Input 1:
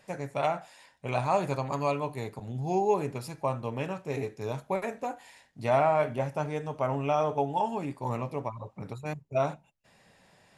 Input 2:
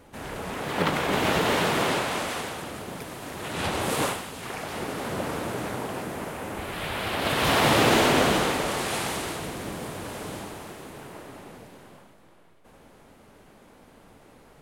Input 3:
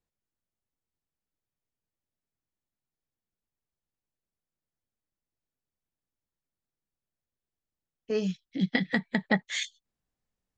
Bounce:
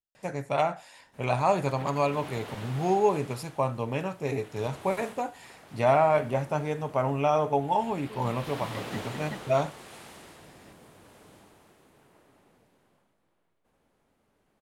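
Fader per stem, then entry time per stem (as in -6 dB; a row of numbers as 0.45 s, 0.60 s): +2.5 dB, -18.5 dB, -16.0 dB; 0.15 s, 1.00 s, 0.00 s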